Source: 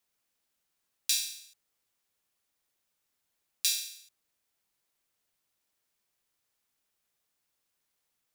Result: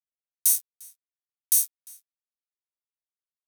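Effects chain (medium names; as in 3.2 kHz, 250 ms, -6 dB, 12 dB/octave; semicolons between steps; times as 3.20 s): low-pass 3 kHz 12 dB/octave; fuzz box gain 50 dB, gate -56 dBFS; differentiator; wide varispeed 2.4×; echo from a far wall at 60 m, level -19 dB; trim +2 dB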